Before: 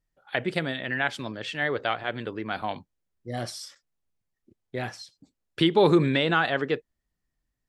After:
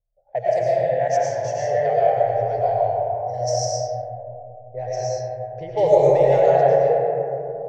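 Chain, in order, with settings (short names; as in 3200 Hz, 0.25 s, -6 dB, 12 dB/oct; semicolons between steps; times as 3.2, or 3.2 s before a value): EQ curve 130 Hz 0 dB, 210 Hz -28 dB, 330 Hz -23 dB, 480 Hz +3 dB, 680 Hz +9 dB, 1300 Hz -27 dB, 1900 Hz -11 dB, 3600 Hz -24 dB, 6000 Hz +14 dB, 9400 Hz -15 dB; digital reverb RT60 3.3 s, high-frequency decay 0.3×, pre-delay 70 ms, DRR -7 dB; low-pass opened by the level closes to 580 Hz, open at -19 dBFS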